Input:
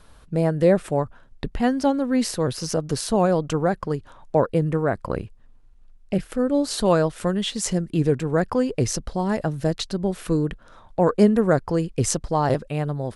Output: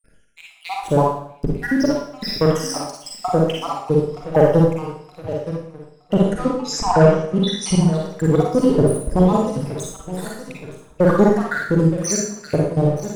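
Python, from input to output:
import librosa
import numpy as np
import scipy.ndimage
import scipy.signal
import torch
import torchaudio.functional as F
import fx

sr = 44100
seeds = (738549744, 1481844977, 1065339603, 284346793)

y = fx.spec_dropout(x, sr, seeds[0], share_pct=83)
y = fx.echo_feedback(y, sr, ms=920, feedback_pct=54, wet_db=-15.0)
y = fx.leveller(y, sr, passes=2)
y = fx.lowpass(y, sr, hz=8900.0, slope=24, at=(6.14, 7.71), fade=0.02)
y = fx.rev_schroeder(y, sr, rt60_s=0.64, comb_ms=38, drr_db=-2.5)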